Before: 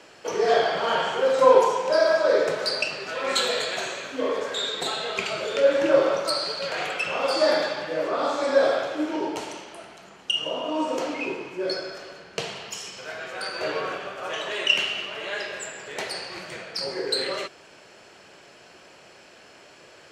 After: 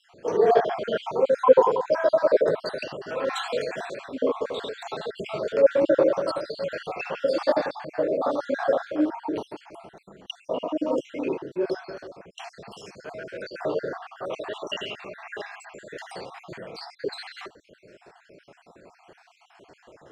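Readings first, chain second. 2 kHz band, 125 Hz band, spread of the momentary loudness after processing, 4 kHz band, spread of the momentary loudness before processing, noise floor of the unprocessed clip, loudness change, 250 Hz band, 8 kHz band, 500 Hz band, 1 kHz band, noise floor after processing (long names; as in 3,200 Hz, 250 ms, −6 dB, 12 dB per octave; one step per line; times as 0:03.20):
−7.5 dB, +1.5 dB, 20 LU, −12.0 dB, 14 LU, −50 dBFS, −1.0 dB, +2.0 dB, below −10 dB, 0.0 dB, −2.5 dB, −60 dBFS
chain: time-frequency cells dropped at random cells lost 53%
tilt shelving filter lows +8 dB, about 1,400 Hz
level −2.5 dB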